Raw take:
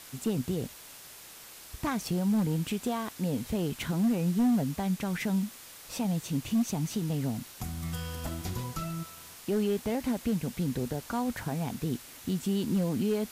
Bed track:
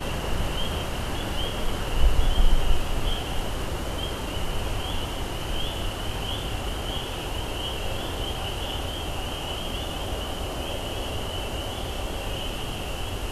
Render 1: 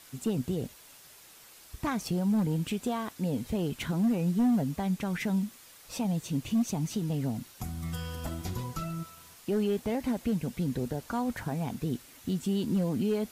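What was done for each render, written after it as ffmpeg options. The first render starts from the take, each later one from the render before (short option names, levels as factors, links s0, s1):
-af "afftdn=nr=6:nf=-49"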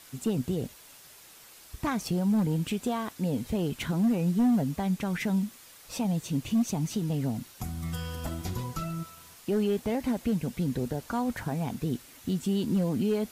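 -af "volume=1.19"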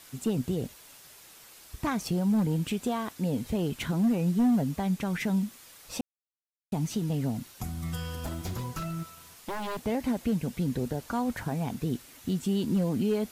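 -filter_complex "[0:a]asettb=1/sr,asplit=3[s0][s1][s2];[s0]atrim=end=8.224[s3];[s1]atrim=start=8.22:end=9.83,asetpts=PTS-STARTPTS,afade=t=in:d=0.004:c=qsin,afade=t=out:st=1.606:d=0.004:c=qsin,aeval=exprs='0.0398*(abs(mod(val(0)/0.0398+3,4)-2)-1)':c=same[s4];[s2]atrim=start=9.826[s5];[s3][s4]acrossfade=d=0.004:c1=hsin:c2=qsin[s6];[s6][s5]acrossfade=d=0.004:c1=qsin:c2=hsin,asplit=3[s7][s8][s9];[s7]atrim=end=6.01,asetpts=PTS-STARTPTS,afade=t=out:st=6.006:d=0.004:c=hsin[s10];[s8]atrim=start=6.01:end=6.72,asetpts=PTS-STARTPTS,volume=0[s11];[s9]atrim=start=6.72,asetpts=PTS-STARTPTS,afade=t=in:d=0.004:c=hsin[s12];[s10][s11][s12]concat=n=3:v=0:a=1"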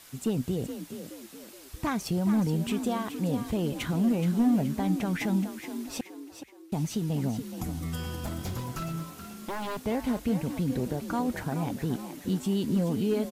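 -filter_complex "[0:a]asplit=5[s0][s1][s2][s3][s4];[s1]adelay=423,afreqshift=45,volume=0.316[s5];[s2]adelay=846,afreqshift=90,volume=0.133[s6];[s3]adelay=1269,afreqshift=135,volume=0.0556[s7];[s4]adelay=1692,afreqshift=180,volume=0.0234[s8];[s0][s5][s6][s7][s8]amix=inputs=5:normalize=0"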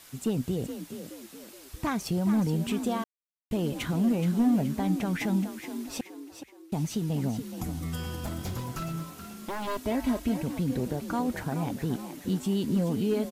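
-filter_complex "[0:a]asettb=1/sr,asplit=3[s0][s1][s2];[s0]atrim=end=9.674[s3];[s1]atrim=start=9.67:end=10.43,asetpts=PTS-STARTPTS,afade=t=in:d=0.004:c=qsin,afade=t=out:st=0.756:d=0.004:c=qsin,aecho=1:1:3.1:0.65,atrim=end_sample=33516[s4];[s2]atrim=start=10.426[s5];[s3][s4]acrossfade=d=0.004:c1=hsin:c2=qsin[s6];[s6][s5]acrossfade=d=0.004:c1=qsin:c2=hsin,asplit=3[s7][s8][s9];[s7]atrim=end=3.04,asetpts=PTS-STARTPTS,afade=t=out:st=3.036:d=0.004:c=hsin[s10];[s8]atrim=start=3.04:end=3.51,asetpts=PTS-STARTPTS,volume=0[s11];[s9]atrim=start=3.51,asetpts=PTS-STARTPTS,afade=t=in:d=0.004:c=hsin[s12];[s10][s11][s12]concat=n=3:v=0:a=1"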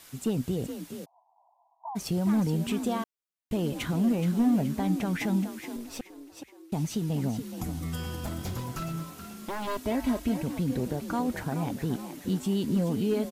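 -filter_complex "[0:a]asplit=3[s0][s1][s2];[s0]afade=t=out:st=1.04:d=0.02[s3];[s1]asuperpass=centerf=830:order=12:qfactor=2.4,afade=t=in:st=1.04:d=0.02,afade=t=out:st=1.95:d=0.02[s4];[s2]afade=t=in:st=1.95:d=0.02[s5];[s3][s4][s5]amix=inputs=3:normalize=0,asettb=1/sr,asplit=3[s6][s7][s8];[s6]atrim=end=4.124[s9];[s7]atrim=start=4.12:end=4.53,asetpts=PTS-STARTPTS,afade=t=in:d=0.004:c=qsin,afade=t=out:st=0.406:d=0.004:c=qsin,aeval=exprs='sgn(val(0))*max(abs(val(0))-0.00211,0)':c=same[s10];[s8]atrim=start=4.526[s11];[s9][s10]acrossfade=d=0.004:c1=hsin:c2=qsin[s12];[s12][s11]acrossfade=d=0.004:c1=qsin:c2=hsin,asettb=1/sr,asplit=3[s13][s14][s15];[s13]atrim=end=5.764[s16];[s14]atrim=start=5.76:end=6.37,asetpts=PTS-STARTPTS,afade=t=in:d=0.004:c=qsin,afade=t=out:st=0.606:d=0.004:c=qsin,aeval=exprs='(tanh(25.1*val(0)+0.65)-tanh(0.65))/25.1':c=same[s17];[s15]atrim=start=6.366[s18];[s16][s17]acrossfade=d=0.004:c1=hsin:c2=qsin[s19];[s19][s18]acrossfade=d=0.004:c1=qsin:c2=hsin"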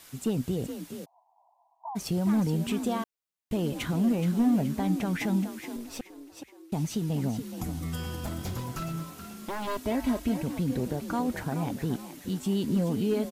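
-filter_complex "[0:a]asettb=1/sr,asplit=3[s0][s1][s2];[s0]atrim=end=11.964[s3];[s1]atrim=start=11.96:end=12.46,asetpts=PTS-STARTPTS,afade=t=in:d=0.004:c=qsin,afade=t=out:st=0.496:d=0.004:c=qsin,equalizer=f=390:w=0.32:g=-4[s4];[s2]atrim=start=12.456[s5];[s3][s4]acrossfade=d=0.004:c1=hsin:c2=qsin[s6];[s6][s5]acrossfade=d=0.004:c1=qsin:c2=hsin"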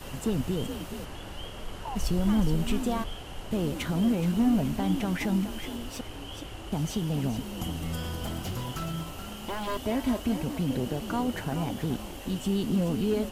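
-filter_complex "[1:a]volume=0.266[s0];[0:a][s0]amix=inputs=2:normalize=0"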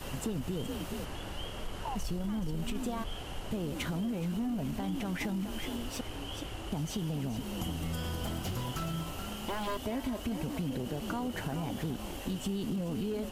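-af "alimiter=limit=0.0841:level=0:latency=1:release=12,acompressor=threshold=0.0282:ratio=6"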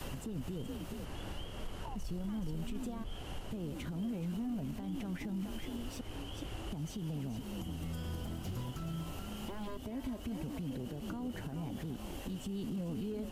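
-filter_complex "[0:a]acrossover=split=390[s0][s1];[s1]acompressor=threshold=0.00501:ratio=4[s2];[s0][s2]amix=inputs=2:normalize=0,alimiter=level_in=2.37:limit=0.0631:level=0:latency=1:release=303,volume=0.422"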